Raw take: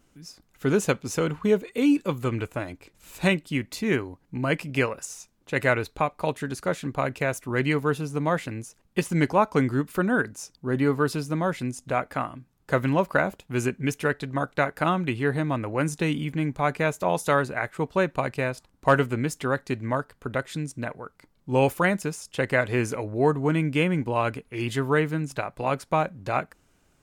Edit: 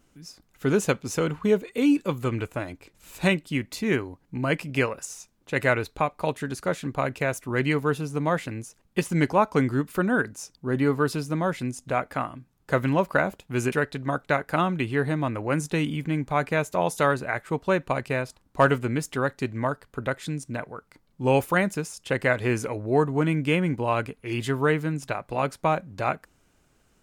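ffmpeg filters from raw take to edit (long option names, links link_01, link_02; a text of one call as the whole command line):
ffmpeg -i in.wav -filter_complex "[0:a]asplit=2[link_01][link_02];[link_01]atrim=end=13.722[link_03];[link_02]atrim=start=13.998[link_04];[link_03][link_04]acrossfade=duration=0.004:curve1=hsin:curve2=hsin" out.wav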